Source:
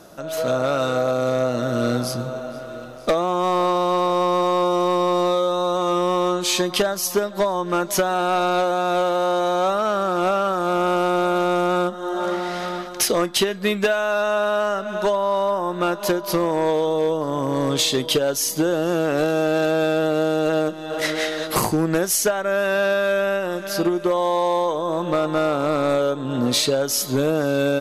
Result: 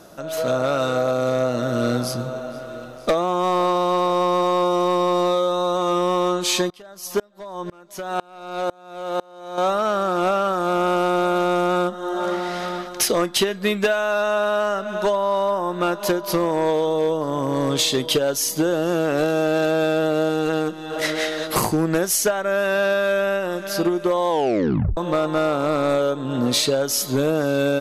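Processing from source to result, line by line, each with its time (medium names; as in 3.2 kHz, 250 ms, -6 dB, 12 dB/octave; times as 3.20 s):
6.70–9.58 s: sawtooth tremolo in dB swelling 2 Hz, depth 31 dB
20.29–20.96 s: band-stop 610 Hz, Q 7.3
24.29 s: tape stop 0.68 s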